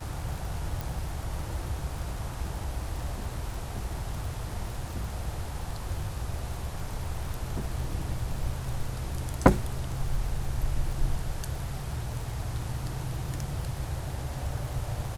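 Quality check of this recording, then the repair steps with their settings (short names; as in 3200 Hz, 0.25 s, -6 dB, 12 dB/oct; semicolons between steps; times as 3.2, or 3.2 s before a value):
crackle 50/s -35 dBFS
0.81 pop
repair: de-click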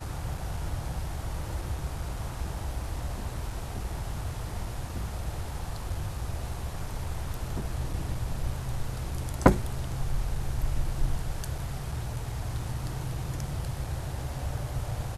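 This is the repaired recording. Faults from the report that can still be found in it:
none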